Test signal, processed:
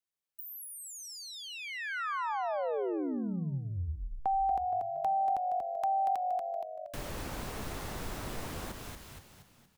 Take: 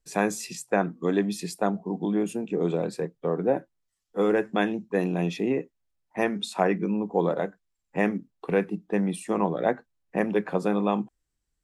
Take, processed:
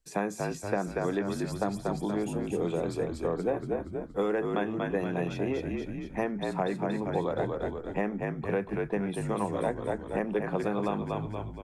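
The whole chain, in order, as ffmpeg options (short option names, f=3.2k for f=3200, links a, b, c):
-filter_complex "[0:a]asplit=7[a][b][c][d][e][f][g];[b]adelay=235,afreqshift=-48,volume=-5.5dB[h];[c]adelay=470,afreqshift=-96,volume=-11.9dB[i];[d]adelay=705,afreqshift=-144,volume=-18.3dB[j];[e]adelay=940,afreqshift=-192,volume=-24.6dB[k];[f]adelay=1175,afreqshift=-240,volume=-31dB[l];[g]adelay=1410,afreqshift=-288,volume=-37.4dB[m];[a][h][i][j][k][l][m]amix=inputs=7:normalize=0,acrossover=split=500|1600[n][o][p];[n]acompressor=threshold=-31dB:ratio=4[q];[o]acompressor=threshold=-31dB:ratio=4[r];[p]acompressor=threshold=-46dB:ratio=4[s];[q][r][s]amix=inputs=3:normalize=0"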